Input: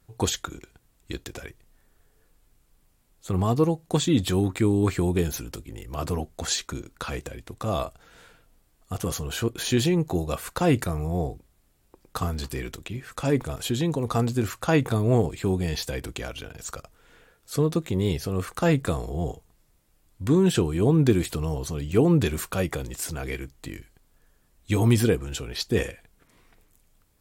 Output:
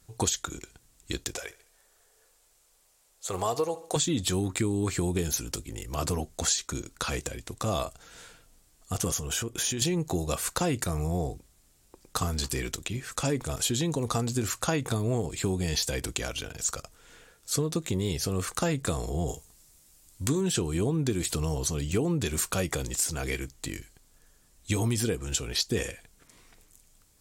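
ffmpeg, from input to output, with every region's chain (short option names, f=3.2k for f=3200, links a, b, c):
-filter_complex "[0:a]asettb=1/sr,asplit=3[a][b][c];[a]atrim=end=1.364[d];[b]atrim=start=1.36:end=3.96,asetpts=PTS-STARTPTS,afade=t=in:d=0.004:c=qsin,afade=t=out:st=2.596:d=0.004:c=qsin,lowshelf=f=350:t=q:w=1.5:g=-12.5,aecho=1:1:70|140|210|280:0.119|0.0523|0.023|0.0101,atrim=end_sample=114660[e];[c]atrim=start=3.956[f];[d][e]acrossfade=d=0.004:c1=hsin:c2=qsin[g];[g][f]acrossfade=d=0.004:c1=qsin:c2=hsin,asettb=1/sr,asplit=3[h][i][j];[h]atrim=end=9.114[k];[i]atrim=start=9.11:end=9.82,asetpts=PTS-STARTPTS,afade=t=in:d=0.004:c=qsin,afade=t=out:st=0.706:d=0.004:c=qsin,bandreject=f=4.2k:w=5.1,acompressor=threshold=-31dB:ratio=4:attack=3.2:release=140:knee=1:detection=peak[l];[j]atrim=start=9.816[m];[k][l]acrossfade=d=0.004:c1=hsin:c2=qsin[n];[n][m]acrossfade=d=0.004:c1=qsin:c2=hsin,asettb=1/sr,asplit=3[o][p][q];[o]atrim=end=19.284[r];[p]atrim=start=19.28:end=20.41,asetpts=PTS-STARTPTS,afade=t=in:d=0.004:c=qsin,afade=t=out:st=1.126:d=0.004:c=qsin,highshelf=f=4.7k:g=8,asplit=2[s][t];[t]adelay=14,volume=-11.5dB[u];[s][u]amix=inputs=2:normalize=0,atrim=end_sample=49833[v];[q]atrim=start=20.406[w];[r][v]acrossfade=d=0.004:c1=hsin:c2=qsin[x];[x][w]acrossfade=d=0.004:c1=qsin:c2=hsin,equalizer=f=7k:w=0.69:g=10.5,acompressor=threshold=-24dB:ratio=6"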